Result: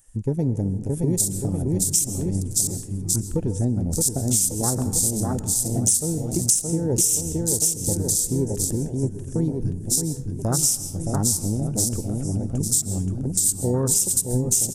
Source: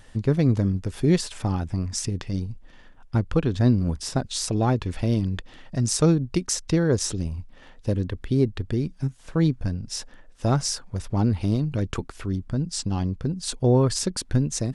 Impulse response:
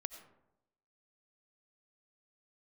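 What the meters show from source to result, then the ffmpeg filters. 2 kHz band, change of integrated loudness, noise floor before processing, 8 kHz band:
under -10 dB, +3.0 dB, -49 dBFS, +13.0 dB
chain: -filter_complex "[0:a]aecho=1:1:620|1147|1595|1976|2299:0.631|0.398|0.251|0.158|0.1,aexciter=amount=14.1:drive=6:freq=6.3k,afwtdn=0.0631,asplit=2[a][b];[1:a]atrim=start_sample=2205,asetrate=30429,aresample=44100[c];[b][c]afir=irnorm=-1:irlink=0,volume=0dB[d];[a][d]amix=inputs=2:normalize=0,acompressor=threshold=-11dB:ratio=6,volume=-6.5dB"

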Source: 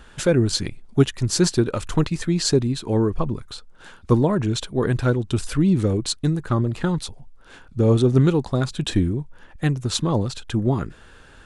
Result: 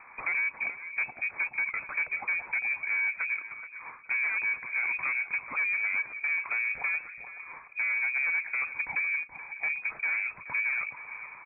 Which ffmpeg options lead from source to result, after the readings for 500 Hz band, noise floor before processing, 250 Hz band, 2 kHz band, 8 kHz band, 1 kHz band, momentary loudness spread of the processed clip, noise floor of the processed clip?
-32.0 dB, -48 dBFS, under -35 dB, +10.5 dB, under -40 dB, -9.5 dB, 12 LU, -50 dBFS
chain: -filter_complex "[0:a]highpass=170,equalizer=f=320:t=o:w=0.33:g=12,acompressor=threshold=-23dB:ratio=2.5,bandreject=f=440:w=14,asplit=2[a][b];[b]aecho=0:1:554:0.0891[c];[a][c]amix=inputs=2:normalize=0,asoftclip=type=tanh:threshold=-26dB,lowpass=f=2.2k:t=q:w=0.5098,lowpass=f=2.2k:t=q:w=0.6013,lowpass=f=2.2k:t=q:w=0.9,lowpass=f=2.2k:t=q:w=2.563,afreqshift=-2600,asplit=2[d][e];[e]adelay=426,lowpass=f=1.1k:p=1,volume=-8dB,asplit=2[f][g];[g]adelay=426,lowpass=f=1.1k:p=1,volume=0.32,asplit=2[h][i];[i]adelay=426,lowpass=f=1.1k:p=1,volume=0.32,asplit=2[j][k];[k]adelay=426,lowpass=f=1.1k:p=1,volume=0.32[l];[f][h][j][l]amix=inputs=4:normalize=0[m];[d][m]amix=inputs=2:normalize=0"

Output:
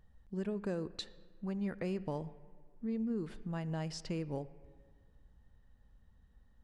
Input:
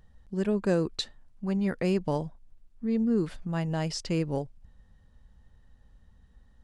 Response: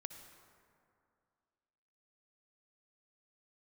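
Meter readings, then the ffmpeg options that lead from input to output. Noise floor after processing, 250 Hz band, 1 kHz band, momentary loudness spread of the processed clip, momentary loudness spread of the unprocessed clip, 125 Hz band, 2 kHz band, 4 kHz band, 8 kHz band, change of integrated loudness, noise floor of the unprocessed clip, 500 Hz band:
-65 dBFS, -9.5 dB, -9.5 dB, 8 LU, 11 LU, -9.0 dB, -10.0 dB, -10.5 dB, -10.5 dB, -10.0 dB, -60 dBFS, -10.5 dB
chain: -filter_complex "[0:a]acompressor=threshold=-28dB:ratio=3,asplit=2[a][b];[1:a]atrim=start_sample=2205,asetrate=57330,aresample=44100,lowpass=3.9k[c];[b][c]afir=irnorm=-1:irlink=0,volume=-1.5dB[d];[a][d]amix=inputs=2:normalize=0,volume=-9dB"

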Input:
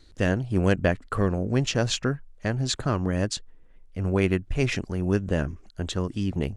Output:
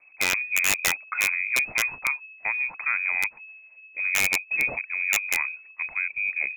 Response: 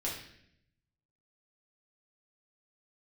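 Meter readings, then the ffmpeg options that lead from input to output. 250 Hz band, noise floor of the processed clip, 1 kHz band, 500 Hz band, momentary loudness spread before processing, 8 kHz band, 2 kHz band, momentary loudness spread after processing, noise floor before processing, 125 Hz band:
-22.0 dB, -52 dBFS, -1.0 dB, -16.5 dB, 8 LU, +7.0 dB, +11.5 dB, 8 LU, -52 dBFS, under -25 dB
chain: -af "lowpass=f=2.2k:t=q:w=0.5098,lowpass=f=2.2k:t=q:w=0.6013,lowpass=f=2.2k:t=q:w=0.9,lowpass=f=2.2k:t=q:w=2.563,afreqshift=-2600,aeval=exprs='(mod(3.76*val(0)+1,2)-1)/3.76':c=same,volume=-1dB"

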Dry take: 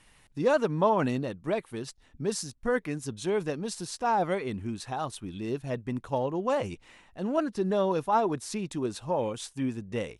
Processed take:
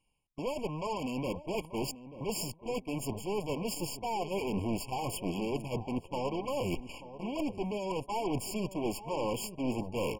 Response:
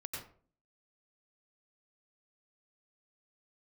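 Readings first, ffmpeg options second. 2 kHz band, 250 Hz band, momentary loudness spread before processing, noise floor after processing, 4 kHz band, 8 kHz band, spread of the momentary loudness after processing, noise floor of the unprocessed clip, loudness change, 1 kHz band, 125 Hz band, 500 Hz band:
-6.5 dB, -3.5 dB, 10 LU, -57 dBFS, 0.0 dB, -1.5 dB, 3 LU, -61 dBFS, -5.5 dB, -7.0 dB, -3.5 dB, -6.5 dB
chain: -filter_complex "[0:a]areverse,acompressor=threshold=-39dB:ratio=20,areverse,bandreject=f=630:w=12,aeval=exprs='0.0447*sin(PI/2*2.51*val(0)/0.0447)':c=same,alimiter=level_in=8.5dB:limit=-24dB:level=0:latency=1:release=62,volume=-8.5dB,agate=range=-34dB:threshold=-41dB:ratio=16:detection=peak,aeval=exprs='0.0251*(cos(1*acos(clip(val(0)/0.0251,-1,1)))-cos(1*PI/2))+0.01*(cos(2*acos(clip(val(0)/0.0251,-1,1)))-cos(2*PI/2))+0.00631*(cos(3*acos(clip(val(0)/0.0251,-1,1)))-cos(3*PI/2))+0.00398*(cos(5*acos(clip(val(0)/0.0251,-1,1)))-cos(5*PI/2))+0.00447*(cos(8*acos(clip(val(0)/0.0251,-1,1)))-cos(8*PI/2))':c=same,equalizer=f=4.3k:t=o:w=0.24:g=-5,asplit=2[a][b];[b]adelay=886,lowpass=f=1.3k:p=1,volume=-13dB,asplit=2[c][d];[d]adelay=886,lowpass=f=1.3k:p=1,volume=0.32,asplit=2[e][f];[f]adelay=886,lowpass=f=1.3k:p=1,volume=0.32[g];[c][e][g]amix=inputs=3:normalize=0[h];[a][h]amix=inputs=2:normalize=0,afftfilt=real='re*eq(mod(floor(b*sr/1024/1100),2),0)':imag='im*eq(mod(floor(b*sr/1024/1100),2),0)':win_size=1024:overlap=0.75,volume=5.5dB"

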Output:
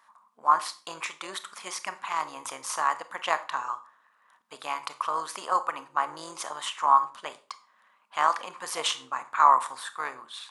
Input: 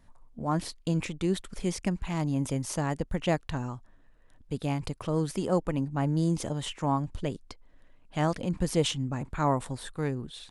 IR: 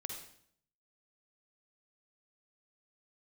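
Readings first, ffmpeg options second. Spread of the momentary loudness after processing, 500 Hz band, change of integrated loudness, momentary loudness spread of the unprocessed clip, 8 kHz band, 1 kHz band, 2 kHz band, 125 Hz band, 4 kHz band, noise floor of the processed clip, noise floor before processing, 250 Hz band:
15 LU, -7.0 dB, +2.5 dB, 8 LU, +3.0 dB, +11.0 dB, +7.0 dB, under -30 dB, +3.5 dB, -66 dBFS, -58 dBFS, -21.0 dB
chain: -filter_complex "[0:a]tremolo=f=210:d=0.519,highpass=f=1.1k:t=q:w=4.9,asplit=2[a][b];[1:a]atrim=start_sample=2205,asetrate=79380,aresample=44100[c];[b][c]afir=irnorm=-1:irlink=0,volume=2.5dB[d];[a][d]amix=inputs=2:normalize=0,volume=1.5dB"

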